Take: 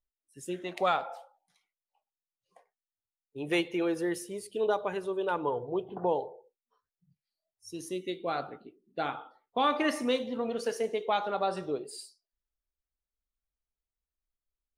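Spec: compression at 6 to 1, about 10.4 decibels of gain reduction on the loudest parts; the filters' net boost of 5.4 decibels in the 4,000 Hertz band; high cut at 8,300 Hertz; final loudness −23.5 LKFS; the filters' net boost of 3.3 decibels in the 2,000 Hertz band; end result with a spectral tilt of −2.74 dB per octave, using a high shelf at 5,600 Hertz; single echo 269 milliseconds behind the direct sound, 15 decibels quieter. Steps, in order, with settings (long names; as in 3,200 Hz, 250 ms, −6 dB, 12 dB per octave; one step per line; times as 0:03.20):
low-pass filter 8,300 Hz
parametric band 2,000 Hz +3 dB
parametric band 4,000 Hz +8 dB
high-shelf EQ 5,600 Hz −6.5 dB
downward compressor 6 to 1, threshold −33 dBFS
single-tap delay 269 ms −15 dB
level +15 dB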